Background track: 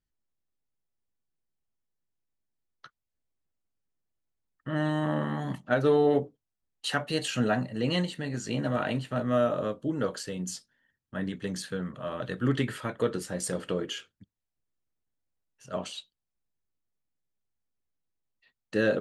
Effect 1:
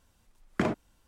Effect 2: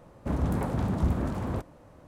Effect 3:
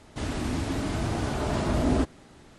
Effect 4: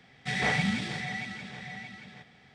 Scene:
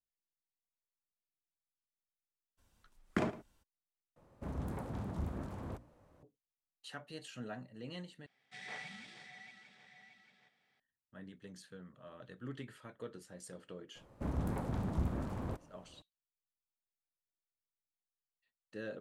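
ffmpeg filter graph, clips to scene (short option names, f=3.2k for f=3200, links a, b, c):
-filter_complex "[2:a]asplit=2[a][b];[0:a]volume=-18.5dB[c];[1:a]asplit=2[d][e];[e]adelay=110.8,volume=-16dB,highshelf=f=4k:g=-2.49[f];[d][f]amix=inputs=2:normalize=0[g];[a]bandreject=f=60:t=h:w=6,bandreject=f=120:t=h:w=6,bandreject=f=180:t=h:w=6,bandreject=f=240:t=h:w=6,bandreject=f=300:t=h:w=6[h];[4:a]highpass=f=570:p=1[i];[b]aeval=exprs='if(lt(val(0),0),0.708*val(0),val(0))':c=same[j];[c]asplit=3[k][l][m];[k]atrim=end=4.164[n];[h]atrim=end=2.07,asetpts=PTS-STARTPTS,volume=-12dB[o];[l]atrim=start=6.226:end=8.264[p];[i]atrim=end=2.54,asetpts=PTS-STARTPTS,volume=-17.5dB[q];[m]atrim=start=10.796[r];[g]atrim=end=1.07,asetpts=PTS-STARTPTS,volume=-6dB,afade=t=in:d=0.02,afade=t=out:st=1.05:d=0.02,adelay=2570[s];[j]atrim=end=2.07,asetpts=PTS-STARTPTS,volume=-7.5dB,afade=t=in:d=0.004:c=hsin,afade=t=out:st=2.066:d=0.004:c=hsin,adelay=13950[t];[n][o]acrossfade=d=0.004:c1=hsin:c2=hsin[u];[u][p]acrossfade=d=0.004:c1=hsin:c2=hsin[v];[v][q]acrossfade=d=0.004:c1=hsin:c2=hsin[w];[w][r]acrossfade=d=0.004:c1=hsin:c2=hsin[x];[x][s][t]amix=inputs=3:normalize=0"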